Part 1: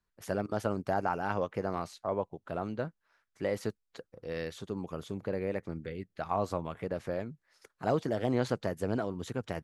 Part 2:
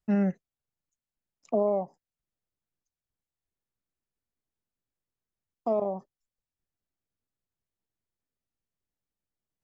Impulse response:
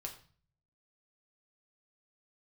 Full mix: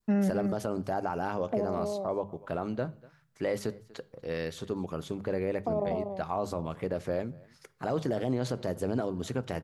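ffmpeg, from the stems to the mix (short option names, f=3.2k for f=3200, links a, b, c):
-filter_complex "[0:a]bandreject=f=50:t=h:w=6,bandreject=f=100:t=h:w=6,bandreject=f=150:t=h:w=6,bandreject=f=200:t=h:w=6,volume=2.5dB,asplit=4[a][b][c][d];[b]volume=-8.5dB[e];[c]volume=-23.5dB[f];[1:a]volume=1.5dB,asplit=2[g][h];[h]volume=-8dB[i];[d]apad=whole_len=424816[j];[g][j]sidechaincompress=threshold=-32dB:ratio=8:attack=5.3:release=122[k];[2:a]atrim=start_sample=2205[l];[e][l]afir=irnorm=-1:irlink=0[m];[f][i]amix=inputs=2:normalize=0,aecho=0:1:241:1[n];[a][k][m][n]amix=inputs=4:normalize=0,adynamicequalizer=threshold=0.00708:dfrequency=1700:dqfactor=0.73:tfrequency=1700:tqfactor=0.73:attack=5:release=100:ratio=0.375:range=3.5:mode=cutabove:tftype=bell,alimiter=limit=-20dB:level=0:latency=1:release=42"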